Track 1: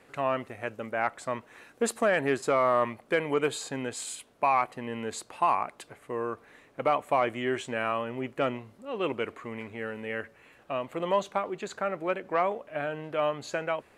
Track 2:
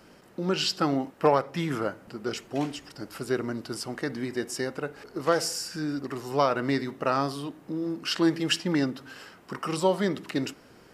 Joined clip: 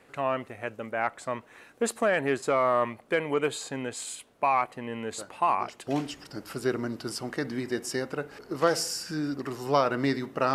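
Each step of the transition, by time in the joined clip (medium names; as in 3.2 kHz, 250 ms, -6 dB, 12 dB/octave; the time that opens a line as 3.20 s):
track 1
5.18 s: add track 2 from 1.83 s 0.69 s -13 dB
5.87 s: go over to track 2 from 2.52 s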